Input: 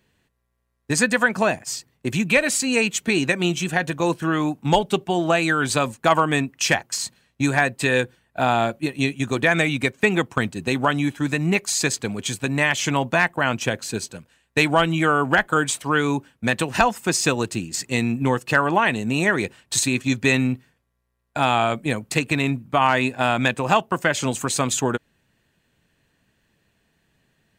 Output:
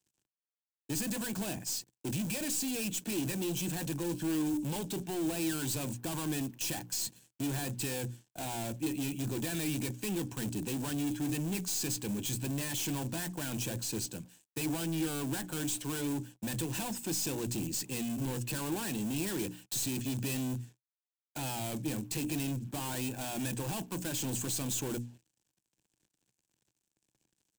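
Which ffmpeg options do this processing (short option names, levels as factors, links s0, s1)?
-filter_complex "[0:a]bandreject=f=60:t=h:w=6,bandreject=f=120:t=h:w=6,bandreject=f=180:t=h:w=6,bandreject=f=240:t=h:w=6,bandreject=f=300:t=h:w=6,aeval=exprs='(tanh(31.6*val(0)+0.35)-tanh(0.35))/31.6':c=same,highshelf=f=5900:t=q:w=1.5:g=-8.5,asplit=2[s0][s1];[s1]aeval=exprs='(mod(35.5*val(0)+1,2)-1)/35.5':c=same,volume=0.398[s2];[s0][s2]amix=inputs=2:normalize=0,acrusher=bits=8:mix=0:aa=0.5,equalizer=f=125:t=o:w=0.33:g=8,equalizer=f=200:t=o:w=0.33:g=5,equalizer=f=315:t=o:w=0.33:g=9,equalizer=f=630:t=o:w=0.33:g=-4,equalizer=f=1250:t=o:w=0.33:g=-11,equalizer=f=2000:t=o:w=0.33:g=-8,equalizer=f=8000:t=o:w=0.33:g=6,acrossover=split=130|2000[s3][s4][s5];[s5]aexciter=amount=1.8:drive=8.9:freq=5900[s6];[s3][s4][s6]amix=inputs=3:normalize=0,volume=0.473"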